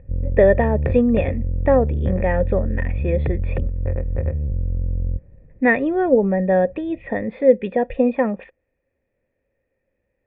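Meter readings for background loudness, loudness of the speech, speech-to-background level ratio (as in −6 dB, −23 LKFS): −25.0 LKFS, −20.0 LKFS, 5.0 dB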